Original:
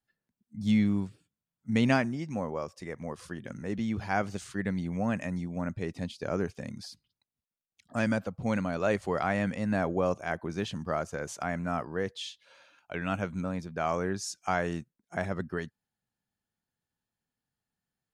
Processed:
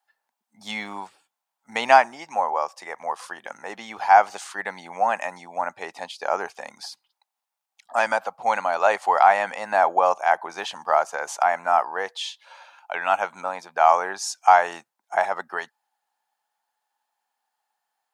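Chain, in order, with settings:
high-pass with resonance 830 Hz, resonance Q 5
level +7.5 dB

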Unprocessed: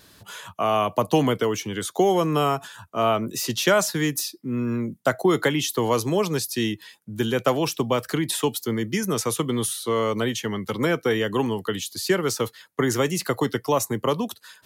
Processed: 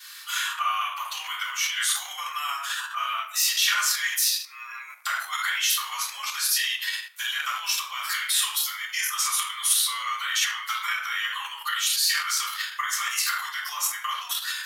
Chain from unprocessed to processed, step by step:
downward compressor 6 to 1, threshold −30 dBFS, peak gain reduction 15 dB
rectangular room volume 87 cubic metres, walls mixed, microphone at 3.4 metres
transient designer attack +2 dB, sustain +8 dB
Butterworth high-pass 1,200 Hz 36 dB per octave

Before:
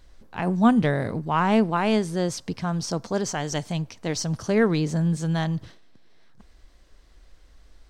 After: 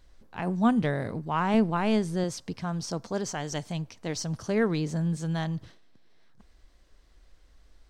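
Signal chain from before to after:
0:01.54–0:02.24: low-shelf EQ 140 Hz +9.5 dB
level −5 dB

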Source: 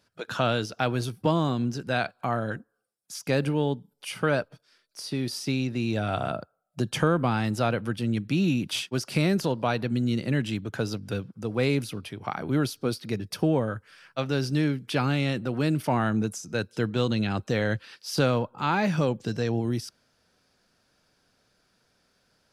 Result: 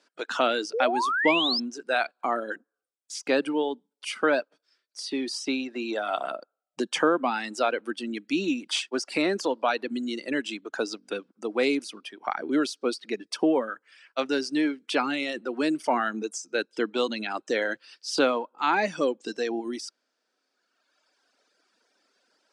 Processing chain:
sound drawn into the spectrogram rise, 0:00.73–0:01.60, 420–5,400 Hz −29 dBFS
reverb reduction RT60 1.9 s
elliptic band-pass filter 280–8,500 Hz, stop band 40 dB
level +3.5 dB

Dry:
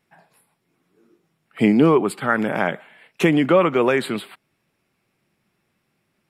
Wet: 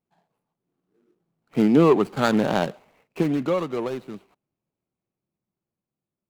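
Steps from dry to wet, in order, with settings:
running median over 25 samples
source passing by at 0:02.28, 9 m/s, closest 3.6 metres
level +3 dB

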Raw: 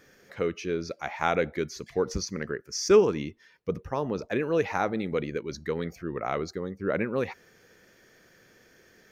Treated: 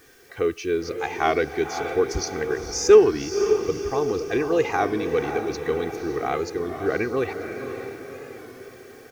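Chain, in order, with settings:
comb filter 2.6 ms, depth 70%
in parallel at −11 dB: bit-depth reduction 8 bits, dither triangular
on the sum: feedback delay with all-pass diffusion 532 ms, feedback 52%, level −7.5 dB
wow of a warped record 33 1/3 rpm, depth 100 cents

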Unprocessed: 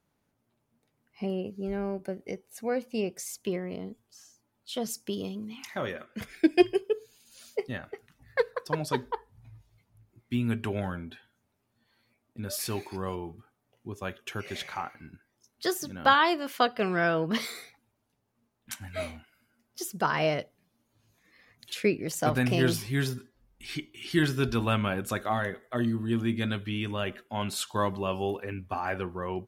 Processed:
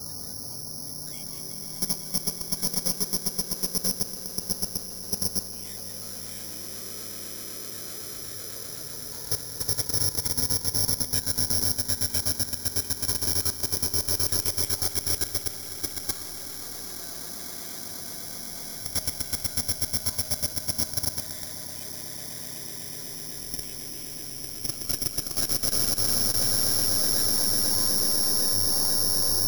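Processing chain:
sign of each sample alone
parametric band 91 Hz +6.5 dB 0.4 octaves
spectral peaks only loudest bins 32
on a send: echo with a time of its own for lows and highs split 1,200 Hz, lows 91 ms, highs 189 ms, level −7 dB
on the sum: chorus effect 1.7 Hz, delay 19 ms, depth 2.3 ms
echo that builds up and dies away 124 ms, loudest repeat 8, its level −5.5 dB
output level in coarse steps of 13 dB
bad sample-rate conversion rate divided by 8×, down filtered, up zero stuff
level −6.5 dB

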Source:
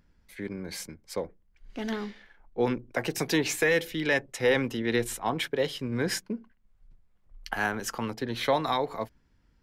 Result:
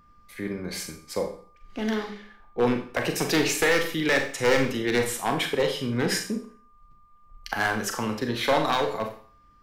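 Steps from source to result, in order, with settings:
wavefolder on the positive side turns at −20.5 dBFS
four-comb reverb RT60 0.46 s, combs from 29 ms, DRR 4 dB
steady tone 1,200 Hz −60 dBFS
level +3 dB

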